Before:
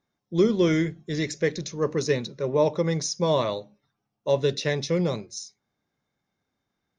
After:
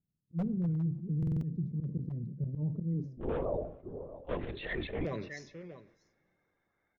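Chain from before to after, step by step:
spectral magnitudes quantised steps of 30 dB
low-pass filter sweep 160 Hz → 2,100 Hz, 0:02.78–0:04.22
single-tap delay 641 ms −20.5 dB
wave folding −15 dBFS
volume swells 164 ms
brickwall limiter −24.5 dBFS, peak gain reduction 9.5 dB
0:03.17–0:05.05: linear-prediction vocoder at 8 kHz whisper
coupled-rooms reverb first 0.6 s, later 3.7 s, from −16 dB, DRR 19 dB
buffer that repeats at 0:01.18, samples 2,048, times 4
level that may fall only so fast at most 110 dB per second
level −2.5 dB

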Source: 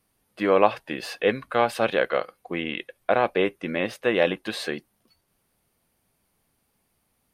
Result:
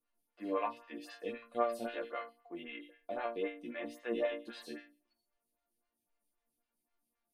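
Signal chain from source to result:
resonators tuned to a chord A#3 major, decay 0.38 s
phaser with staggered stages 3.8 Hz
level +6 dB

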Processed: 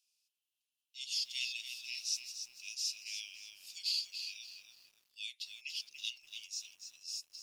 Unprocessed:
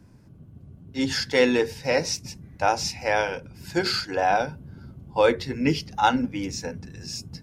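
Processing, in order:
Butterworth high-pass 2,600 Hz 72 dB per octave
feedback echo at a low word length 288 ms, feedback 35%, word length 9 bits, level −8 dB
level −7 dB

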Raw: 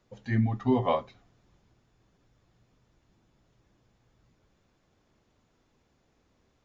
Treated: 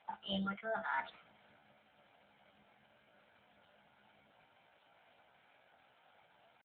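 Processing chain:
high-pass filter 540 Hz 6 dB per octave
comb filter 2.3 ms, depth 100%
reversed playback
downward compressor 16 to 1, threshold −41 dBFS, peak gain reduction 20.5 dB
reversed playback
pitch shifter +9.5 semitones
level +7.5 dB
AMR narrowband 7.95 kbit/s 8,000 Hz

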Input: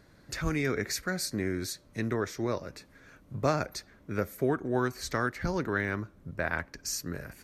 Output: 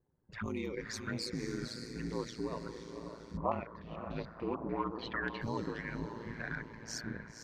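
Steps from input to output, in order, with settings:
spectral dynamics exaggerated over time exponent 1.5
soft clipping −23.5 dBFS, distortion −16 dB
low-pass that shuts in the quiet parts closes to 730 Hz, open at −28.5 dBFS
brickwall limiter −35 dBFS, peak gain reduction 11 dB
flanger swept by the level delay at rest 2.5 ms, full sweep at −38 dBFS
parametric band 1,000 Hz +11.5 dB 0.24 octaves
feedback delay with all-pass diffusion 536 ms, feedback 49%, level −6.5 dB
ring modulation 56 Hz
low-shelf EQ 65 Hz −10.5 dB
0:03.37–0:05.41: low-pass on a step sequencer 6.8 Hz 990–3,700 Hz
level +8.5 dB

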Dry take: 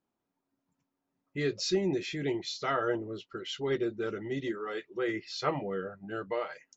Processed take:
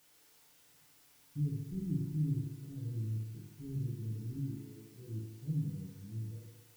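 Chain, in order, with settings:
inverse Chebyshev low-pass filter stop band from 1,000 Hz, stop band 80 dB
background noise white −73 dBFS
feedback delay network reverb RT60 1.3 s, low-frequency decay 0.75×, high-frequency decay 0.95×, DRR −2.5 dB
level +4 dB

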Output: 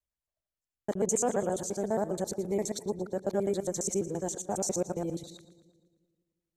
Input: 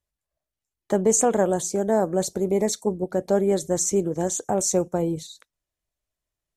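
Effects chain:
reversed piece by piece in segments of 68 ms
echo with a time of its own for lows and highs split 420 Hz, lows 175 ms, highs 115 ms, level −16 dB
level −8.5 dB

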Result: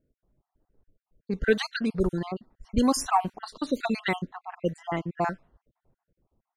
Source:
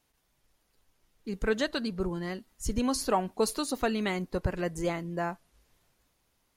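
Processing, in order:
time-frequency cells dropped at random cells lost 45%
low-pass that shuts in the quiet parts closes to 510 Hz, open at −27.5 dBFS
level +6.5 dB

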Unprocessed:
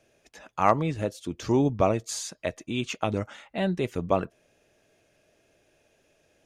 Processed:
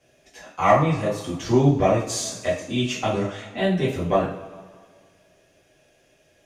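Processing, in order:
harmonic generator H 2 −15 dB, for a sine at −5.5 dBFS
coupled-rooms reverb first 0.41 s, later 1.9 s, from −18 dB, DRR −8.5 dB
level −3.5 dB

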